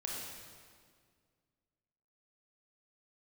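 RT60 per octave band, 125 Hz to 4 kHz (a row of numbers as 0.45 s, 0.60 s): 2.4 s, 2.3 s, 2.1 s, 1.8 s, 1.7 s, 1.6 s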